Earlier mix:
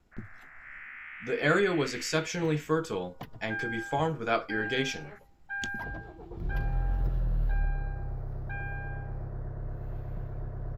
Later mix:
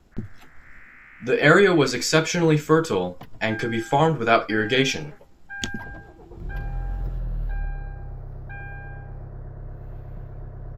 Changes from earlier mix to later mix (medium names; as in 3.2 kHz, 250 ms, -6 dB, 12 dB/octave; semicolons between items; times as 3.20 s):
speech +10.0 dB; first sound: add distance through air 390 m